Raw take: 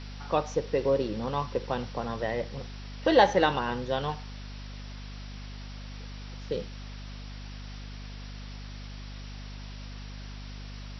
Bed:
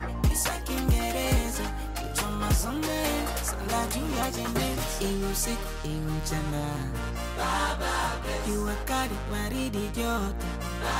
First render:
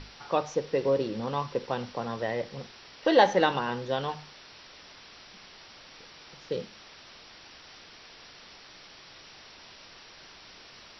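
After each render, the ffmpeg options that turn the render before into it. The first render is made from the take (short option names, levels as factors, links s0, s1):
-af "bandreject=f=50:t=h:w=6,bandreject=f=100:t=h:w=6,bandreject=f=150:t=h:w=6,bandreject=f=200:t=h:w=6,bandreject=f=250:t=h:w=6"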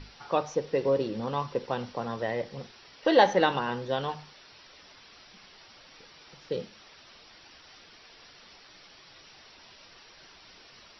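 -af "afftdn=nr=6:nf=-51"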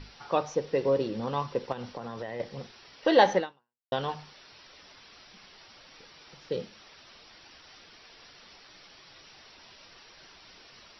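-filter_complex "[0:a]asettb=1/sr,asplit=3[s0][s1][s2];[s0]atrim=end=1.724[s3];[s1]atrim=start=1.72:end=2.4,asetpts=PTS-STARTPTS,afade=t=in:d=0.004:c=qsin,afade=t=out:st=0.676:d=0.004:c=qsin,acompressor=threshold=0.0251:ratio=10:attack=3.2:release=140:knee=1:detection=peak[s4];[s2]atrim=start=2.396[s5];[s3][s4]acrossfade=d=0.004:c1=hsin:c2=qsin[s6];[s6][s5]acrossfade=d=0.004:c1=qsin:c2=hsin,asplit=2[s7][s8];[s7]atrim=end=3.92,asetpts=PTS-STARTPTS,afade=t=out:st=3.37:d=0.55:c=exp[s9];[s8]atrim=start=3.92,asetpts=PTS-STARTPTS,afade=t=in:d=0.004:c=hsin[s10];[s9][s10]concat=n=2:v=0:a=1"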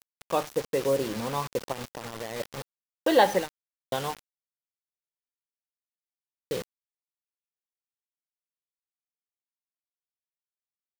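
-af "acrusher=bits=5:mix=0:aa=0.000001"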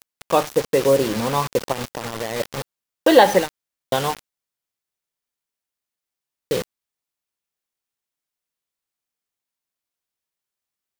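-af "volume=2.82,alimiter=limit=0.891:level=0:latency=1"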